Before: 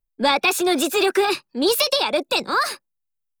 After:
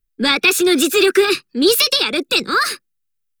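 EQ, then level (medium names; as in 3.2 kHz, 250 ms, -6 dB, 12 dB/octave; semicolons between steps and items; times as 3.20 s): high-order bell 760 Hz -13.5 dB 1.1 oct; +6.0 dB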